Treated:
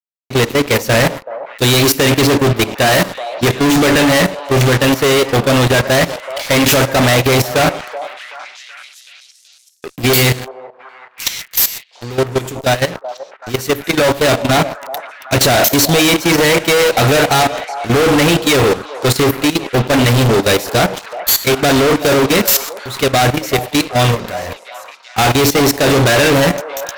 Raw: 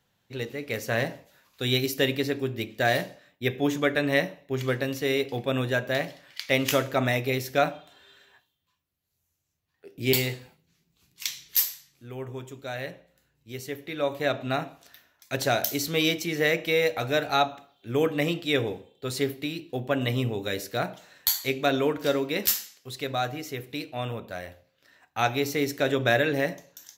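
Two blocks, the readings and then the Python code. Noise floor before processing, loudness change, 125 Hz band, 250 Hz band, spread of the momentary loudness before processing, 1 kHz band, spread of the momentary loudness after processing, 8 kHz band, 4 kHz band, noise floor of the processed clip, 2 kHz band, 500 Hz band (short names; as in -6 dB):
-76 dBFS, +14.5 dB, +16.5 dB, +15.5 dB, 13 LU, +15.0 dB, 13 LU, +18.0 dB, +15.0 dB, -45 dBFS, +13.5 dB, +13.5 dB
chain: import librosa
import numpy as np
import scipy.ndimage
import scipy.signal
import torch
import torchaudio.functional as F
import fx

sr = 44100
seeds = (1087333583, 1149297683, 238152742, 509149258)

y = fx.fuzz(x, sr, gain_db=44.0, gate_db=-47.0)
y = fx.level_steps(y, sr, step_db=15)
y = fx.echo_stepped(y, sr, ms=378, hz=700.0, octaves=0.7, feedback_pct=70, wet_db=-10.0)
y = y * 10.0 ** (4.5 / 20.0)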